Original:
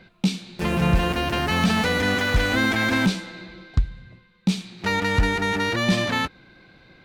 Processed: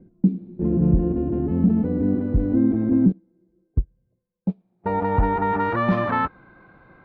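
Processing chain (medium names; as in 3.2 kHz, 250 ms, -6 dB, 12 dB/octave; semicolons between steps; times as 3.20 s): low-pass sweep 310 Hz -> 1.2 kHz, 3.18–5.81 s; 3.12–4.86 s: upward expansion 2.5:1, over -30 dBFS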